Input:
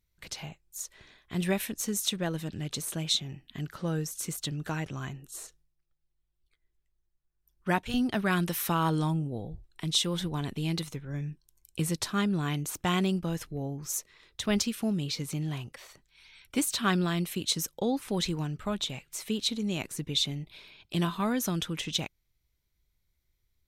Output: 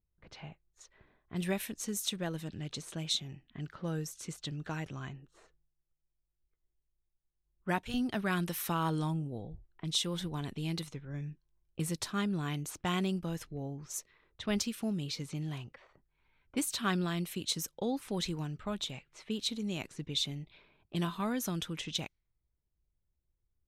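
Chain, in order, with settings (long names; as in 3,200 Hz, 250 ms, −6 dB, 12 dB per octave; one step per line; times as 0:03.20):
low-pass that shuts in the quiet parts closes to 810 Hz, open at −28.5 dBFS
level −5 dB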